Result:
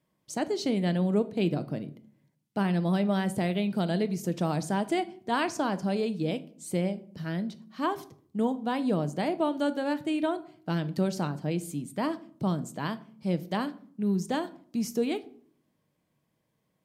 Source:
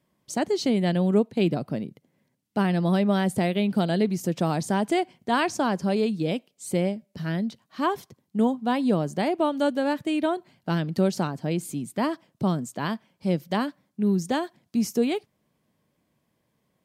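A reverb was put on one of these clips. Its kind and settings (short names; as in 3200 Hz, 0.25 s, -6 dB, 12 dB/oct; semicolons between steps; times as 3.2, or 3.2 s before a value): shoebox room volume 660 m³, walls furnished, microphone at 0.57 m; gain -4.5 dB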